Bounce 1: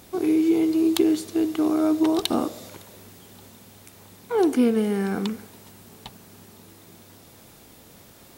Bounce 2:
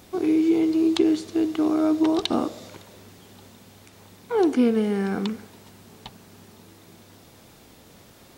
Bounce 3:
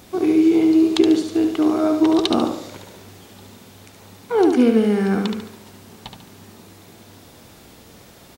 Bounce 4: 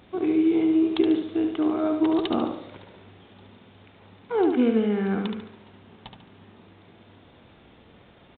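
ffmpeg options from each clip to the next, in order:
ffmpeg -i in.wav -filter_complex "[0:a]acrossover=split=7300[link_01][link_02];[link_02]acompressor=threshold=-58dB:ratio=4:attack=1:release=60[link_03];[link_01][link_03]amix=inputs=2:normalize=0" out.wav
ffmpeg -i in.wav -af "aecho=1:1:72|144|216|288|360:0.501|0.205|0.0842|0.0345|0.0142,volume=4dB" out.wav
ffmpeg -i in.wav -af "volume=-6dB" -ar 8000 -c:a adpcm_g726 -b:a 40k out.wav

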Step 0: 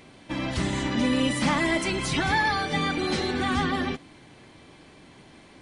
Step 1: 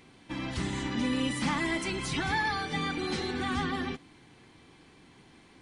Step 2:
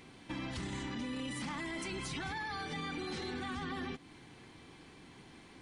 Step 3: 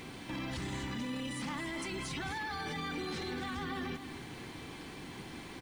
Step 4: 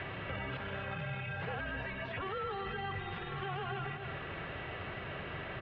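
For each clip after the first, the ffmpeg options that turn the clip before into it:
ffmpeg -i in.wav -af "equalizer=frequency=600:width=6.4:gain=-10,volume=-5.5dB" out.wav
ffmpeg -i in.wav -af "alimiter=level_in=2.5dB:limit=-24dB:level=0:latency=1:release=18,volume=-2.5dB,acompressor=threshold=-41dB:ratio=2.5,volume=1dB" out.wav
ffmpeg -i in.wav -af "alimiter=level_in=16.5dB:limit=-24dB:level=0:latency=1:release=17,volume=-16.5dB,acrusher=bits=11:mix=0:aa=0.000001,aecho=1:1:259:0.282,volume=9dB" out.wav
ffmpeg -i in.wav -filter_complex "[0:a]acrossover=split=350|1800[link_01][link_02][link_03];[link_01]acompressor=threshold=-46dB:ratio=4[link_04];[link_02]acompressor=threshold=-51dB:ratio=4[link_05];[link_03]acompressor=threshold=-55dB:ratio=4[link_06];[link_04][link_05][link_06]amix=inputs=3:normalize=0,highpass=frequency=240:width_type=q:width=0.5412,highpass=frequency=240:width_type=q:width=1.307,lowpass=frequency=3400:width_type=q:width=0.5176,lowpass=frequency=3400:width_type=q:width=0.7071,lowpass=frequency=3400:width_type=q:width=1.932,afreqshift=-390,highpass=frequency=160:poles=1,volume=11dB" out.wav

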